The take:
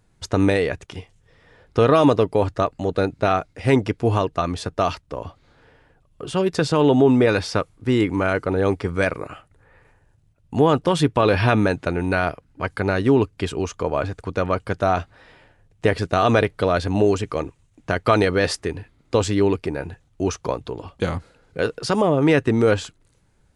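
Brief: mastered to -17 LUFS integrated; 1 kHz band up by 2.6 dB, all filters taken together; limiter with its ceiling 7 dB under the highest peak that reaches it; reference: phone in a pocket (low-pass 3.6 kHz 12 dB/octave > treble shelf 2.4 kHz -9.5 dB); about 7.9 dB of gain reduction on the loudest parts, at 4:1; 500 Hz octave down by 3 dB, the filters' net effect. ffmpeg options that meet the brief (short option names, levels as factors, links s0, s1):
-af "equalizer=f=500:t=o:g=-5,equalizer=f=1000:t=o:g=7,acompressor=threshold=0.1:ratio=4,alimiter=limit=0.2:level=0:latency=1,lowpass=3600,highshelf=f=2400:g=-9.5,volume=3.55"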